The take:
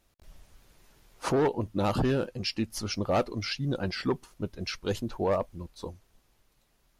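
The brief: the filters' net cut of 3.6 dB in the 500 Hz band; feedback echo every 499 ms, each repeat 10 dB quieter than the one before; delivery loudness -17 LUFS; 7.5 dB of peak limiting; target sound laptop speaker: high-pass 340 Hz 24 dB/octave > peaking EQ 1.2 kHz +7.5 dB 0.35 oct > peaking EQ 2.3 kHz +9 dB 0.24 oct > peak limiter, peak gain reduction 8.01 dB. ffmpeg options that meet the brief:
-af "equalizer=f=500:t=o:g=-4,alimiter=level_in=1.12:limit=0.0631:level=0:latency=1,volume=0.891,highpass=f=340:w=0.5412,highpass=f=340:w=1.3066,equalizer=f=1200:t=o:w=0.35:g=7.5,equalizer=f=2300:t=o:w=0.24:g=9,aecho=1:1:499|998|1497|1996:0.316|0.101|0.0324|0.0104,volume=12.6,alimiter=limit=0.501:level=0:latency=1"

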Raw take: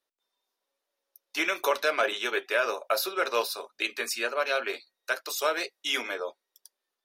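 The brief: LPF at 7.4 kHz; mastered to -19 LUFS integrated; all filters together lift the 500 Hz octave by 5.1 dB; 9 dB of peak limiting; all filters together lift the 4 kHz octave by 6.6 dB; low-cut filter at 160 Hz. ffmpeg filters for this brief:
-af "highpass=160,lowpass=7400,equalizer=f=500:t=o:g=6,equalizer=f=4000:t=o:g=8.5,volume=3.16,alimiter=limit=0.422:level=0:latency=1"

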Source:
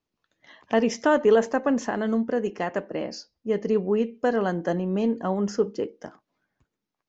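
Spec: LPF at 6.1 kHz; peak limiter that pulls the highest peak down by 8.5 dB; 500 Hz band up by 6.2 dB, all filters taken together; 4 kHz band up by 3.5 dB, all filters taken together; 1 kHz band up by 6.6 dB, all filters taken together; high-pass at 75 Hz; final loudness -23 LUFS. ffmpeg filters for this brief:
-af "highpass=75,lowpass=6100,equalizer=f=500:t=o:g=6,equalizer=f=1000:t=o:g=6,equalizer=f=4000:t=o:g=6,alimiter=limit=0.282:level=0:latency=1"

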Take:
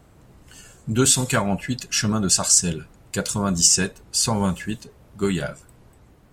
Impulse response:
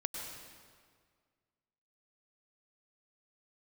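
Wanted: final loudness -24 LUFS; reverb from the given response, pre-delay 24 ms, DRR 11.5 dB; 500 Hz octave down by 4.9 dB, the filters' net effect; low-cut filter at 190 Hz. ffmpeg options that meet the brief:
-filter_complex "[0:a]highpass=190,equalizer=f=500:t=o:g=-6.5,asplit=2[s0][s1];[1:a]atrim=start_sample=2205,adelay=24[s2];[s1][s2]afir=irnorm=-1:irlink=0,volume=0.224[s3];[s0][s3]amix=inputs=2:normalize=0,volume=0.668"

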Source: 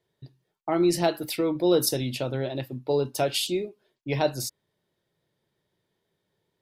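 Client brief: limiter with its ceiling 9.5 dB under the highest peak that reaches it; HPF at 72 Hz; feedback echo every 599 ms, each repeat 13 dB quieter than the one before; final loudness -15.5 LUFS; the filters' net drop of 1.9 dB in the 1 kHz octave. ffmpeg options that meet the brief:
-af "highpass=72,equalizer=f=1000:t=o:g=-3,alimiter=limit=0.106:level=0:latency=1,aecho=1:1:599|1198|1797:0.224|0.0493|0.0108,volume=5.31"

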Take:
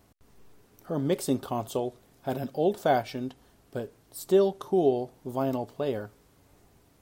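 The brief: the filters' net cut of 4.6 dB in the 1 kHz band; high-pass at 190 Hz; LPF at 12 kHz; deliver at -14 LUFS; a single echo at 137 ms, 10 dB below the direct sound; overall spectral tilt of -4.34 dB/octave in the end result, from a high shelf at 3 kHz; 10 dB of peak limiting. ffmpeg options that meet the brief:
-af "highpass=190,lowpass=12000,equalizer=f=1000:t=o:g=-8.5,highshelf=f=3000:g=7,alimiter=limit=0.0708:level=0:latency=1,aecho=1:1:137:0.316,volume=10.6"

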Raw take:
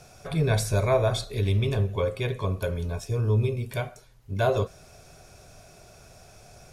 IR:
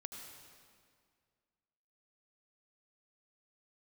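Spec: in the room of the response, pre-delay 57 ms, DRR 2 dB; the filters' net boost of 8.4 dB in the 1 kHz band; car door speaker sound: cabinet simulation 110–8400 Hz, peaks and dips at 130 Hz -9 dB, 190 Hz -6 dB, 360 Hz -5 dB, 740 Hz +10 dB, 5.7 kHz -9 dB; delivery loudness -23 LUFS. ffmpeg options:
-filter_complex "[0:a]equalizer=f=1000:t=o:g=4,asplit=2[s0][s1];[1:a]atrim=start_sample=2205,adelay=57[s2];[s1][s2]afir=irnorm=-1:irlink=0,volume=1.12[s3];[s0][s3]amix=inputs=2:normalize=0,highpass=110,equalizer=f=130:t=q:w=4:g=-9,equalizer=f=190:t=q:w=4:g=-6,equalizer=f=360:t=q:w=4:g=-5,equalizer=f=740:t=q:w=4:g=10,equalizer=f=5700:t=q:w=4:g=-9,lowpass=f=8400:w=0.5412,lowpass=f=8400:w=1.3066,volume=1.12"

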